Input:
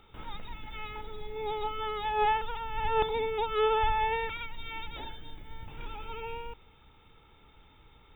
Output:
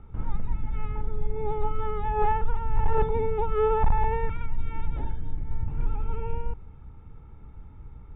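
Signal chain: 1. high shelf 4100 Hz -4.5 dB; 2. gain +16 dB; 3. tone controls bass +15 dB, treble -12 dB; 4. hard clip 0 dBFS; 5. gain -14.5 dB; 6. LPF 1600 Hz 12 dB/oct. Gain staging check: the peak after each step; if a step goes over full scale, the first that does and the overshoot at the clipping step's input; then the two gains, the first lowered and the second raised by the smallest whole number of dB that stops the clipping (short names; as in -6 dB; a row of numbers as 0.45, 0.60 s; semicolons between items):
-15.5, +0.5, +8.5, 0.0, -14.5, -14.0 dBFS; step 2, 8.5 dB; step 2 +7 dB, step 5 -5.5 dB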